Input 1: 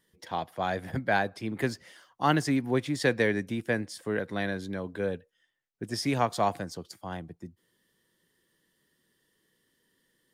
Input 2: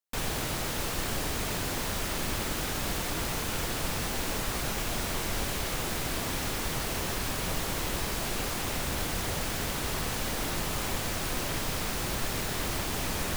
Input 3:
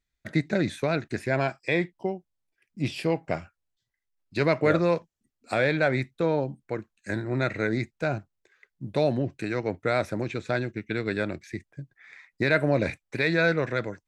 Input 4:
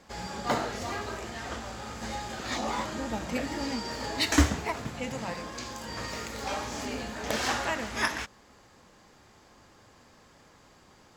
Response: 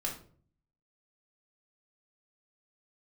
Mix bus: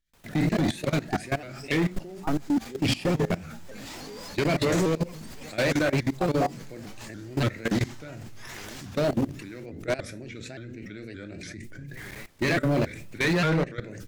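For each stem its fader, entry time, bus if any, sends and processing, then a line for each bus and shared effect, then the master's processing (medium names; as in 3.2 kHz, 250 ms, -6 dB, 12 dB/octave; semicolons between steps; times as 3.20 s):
-1.5 dB, 0.00 s, no send, no echo send, spectral contrast expander 2.5:1
-7.5 dB, 0.00 s, muted 9.66–11.97 s, send -16 dB, echo send -16.5 dB, peak limiter -28.5 dBFS, peak gain reduction 10 dB
+2.5 dB, 0.00 s, send -3.5 dB, echo send -20 dB, peaking EQ 950 Hz -13 dB 1.1 oct; decay stretcher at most 60 dB/s
-9.0 dB, 0.40 s, no send, echo send -6.5 dB, steep high-pass 170 Hz 36 dB/octave; treble shelf 2.3 kHz +9.5 dB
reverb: on, RT60 0.50 s, pre-delay 3 ms
echo: delay 978 ms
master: level held to a coarse grid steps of 20 dB; hard clipper -19.5 dBFS, distortion -10 dB; vibrato with a chosen wave saw up 3.5 Hz, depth 160 cents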